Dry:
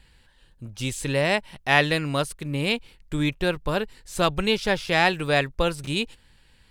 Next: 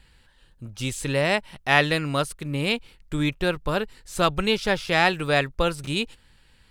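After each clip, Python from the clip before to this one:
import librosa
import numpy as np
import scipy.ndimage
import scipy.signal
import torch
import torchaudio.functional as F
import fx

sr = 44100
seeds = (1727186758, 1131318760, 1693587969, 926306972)

y = fx.peak_eq(x, sr, hz=1300.0, db=4.0, octaves=0.24)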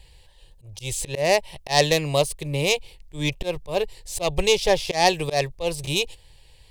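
y = fx.self_delay(x, sr, depth_ms=0.11)
y = fx.fixed_phaser(y, sr, hz=580.0, stages=4)
y = fx.auto_swell(y, sr, attack_ms=143.0)
y = y * 10.0 ** (7.0 / 20.0)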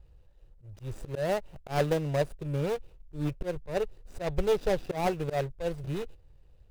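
y = scipy.ndimage.median_filter(x, 41, mode='constant')
y = y * 10.0 ** (-4.0 / 20.0)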